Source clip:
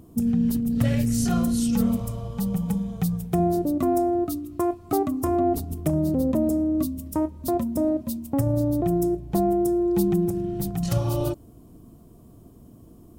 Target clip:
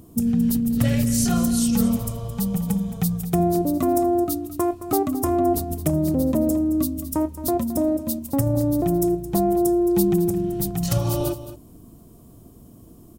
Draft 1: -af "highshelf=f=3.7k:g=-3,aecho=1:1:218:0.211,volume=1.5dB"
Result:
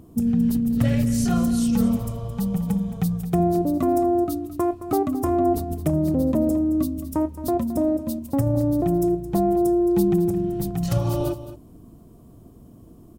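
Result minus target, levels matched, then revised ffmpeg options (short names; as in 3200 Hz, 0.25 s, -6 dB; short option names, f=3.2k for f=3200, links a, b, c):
8000 Hz band -7.5 dB
-af "highshelf=f=3.7k:g=6.5,aecho=1:1:218:0.211,volume=1.5dB"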